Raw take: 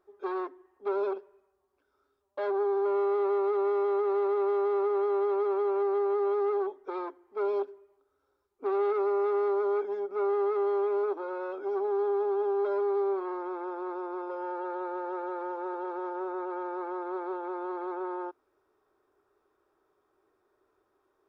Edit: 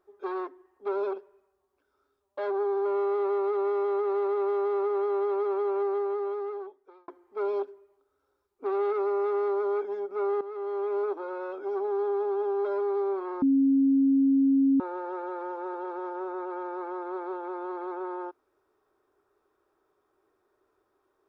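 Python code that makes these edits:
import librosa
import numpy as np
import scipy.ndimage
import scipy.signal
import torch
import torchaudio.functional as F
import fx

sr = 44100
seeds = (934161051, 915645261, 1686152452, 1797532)

y = fx.edit(x, sr, fx.fade_out_span(start_s=5.84, length_s=1.24),
    fx.fade_in_from(start_s=10.41, length_s=0.58, floor_db=-14.0),
    fx.bleep(start_s=13.42, length_s=1.38, hz=272.0, db=-18.5), tone=tone)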